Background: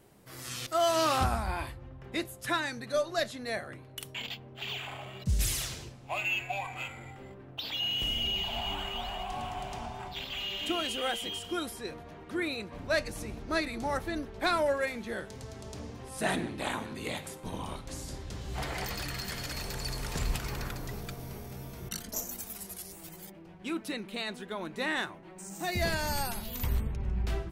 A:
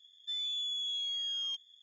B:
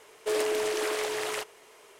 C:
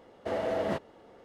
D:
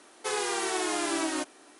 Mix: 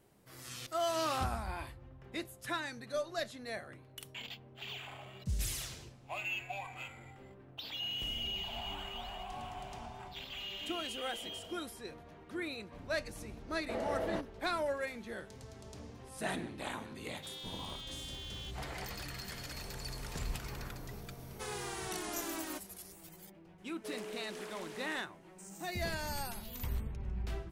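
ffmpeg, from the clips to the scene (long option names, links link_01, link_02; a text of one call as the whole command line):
ffmpeg -i bed.wav -i cue0.wav -i cue1.wav -i cue2.wav -i cue3.wav -filter_complex "[3:a]asplit=2[link_01][link_02];[0:a]volume=-7dB[link_03];[link_01]acompressor=threshold=-36dB:ratio=6:attack=3.2:release=140:knee=1:detection=peak[link_04];[1:a]aeval=exprs='val(0)*sgn(sin(2*PI*160*n/s))':channel_layout=same[link_05];[link_04]atrim=end=1.24,asetpts=PTS-STARTPTS,volume=-16.5dB,afade=type=in:duration=0.004:curve=hsin,afade=type=out:start_time=1.236:duration=0.004:curve=hsin,adelay=10870[link_06];[link_02]atrim=end=1.24,asetpts=PTS-STARTPTS,volume=-6.5dB,afade=type=in:duration=0.004:curve=hsin,afade=type=out:start_time=1.236:duration=0.004:curve=hsin,adelay=13430[link_07];[link_05]atrim=end=1.82,asetpts=PTS-STARTPTS,volume=-11.5dB,afade=type=in:duration=0.004:curve=hsin,afade=type=out:start_time=1.816:duration=0.004:curve=hsin,adelay=16950[link_08];[4:a]atrim=end=1.79,asetpts=PTS-STARTPTS,volume=-11.5dB,afade=type=in:duration=0.004:curve=hsin,afade=type=out:start_time=1.786:duration=0.004:curve=hsin,adelay=21150[link_09];[2:a]atrim=end=1.99,asetpts=PTS-STARTPTS,volume=-16.5dB,afade=type=in:duration=0.004:curve=hsin,afade=type=out:start_time=1.986:duration=0.004:curve=hsin,adelay=23580[link_10];[link_03][link_06][link_07][link_08][link_09][link_10]amix=inputs=6:normalize=0" out.wav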